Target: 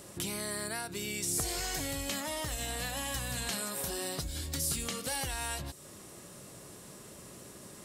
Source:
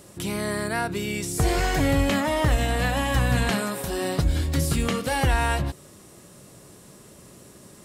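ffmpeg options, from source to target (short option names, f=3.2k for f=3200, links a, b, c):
-filter_complex "[0:a]lowshelf=f=400:g=-4,acrossover=split=4000[a][b];[a]acompressor=threshold=-37dB:ratio=6[c];[c][b]amix=inputs=2:normalize=0"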